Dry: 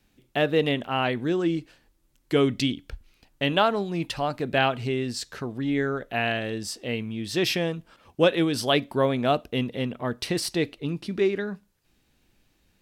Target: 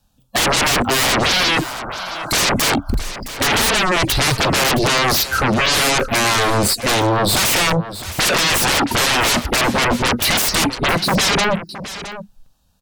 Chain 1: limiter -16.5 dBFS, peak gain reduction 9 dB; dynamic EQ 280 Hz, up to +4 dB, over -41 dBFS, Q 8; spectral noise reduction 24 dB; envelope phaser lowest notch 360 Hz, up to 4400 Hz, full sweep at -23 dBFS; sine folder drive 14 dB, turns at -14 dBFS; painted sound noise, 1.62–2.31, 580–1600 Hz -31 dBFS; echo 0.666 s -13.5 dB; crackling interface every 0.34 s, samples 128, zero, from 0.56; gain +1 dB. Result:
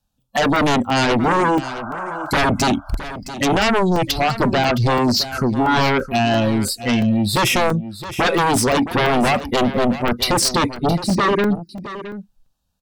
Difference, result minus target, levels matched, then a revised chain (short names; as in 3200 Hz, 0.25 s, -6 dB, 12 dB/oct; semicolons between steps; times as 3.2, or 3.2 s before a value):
sine folder: distortion -25 dB
limiter -16.5 dBFS, peak gain reduction 9 dB; dynamic EQ 280 Hz, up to +4 dB, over -41 dBFS, Q 8; spectral noise reduction 24 dB; envelope phaser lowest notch 360 Hz, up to 4400 Hz, full sweep at -23 dBFS; sine folder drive 25 dB, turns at -14 dBFS; painted sound noise, 1.62–2.31, 580–1600 Hz -31 dBFS; echo 0.666 s -13.5 dB; crackling interface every 0.34 s, samples 128, zero, from 0.56; gain +1 dB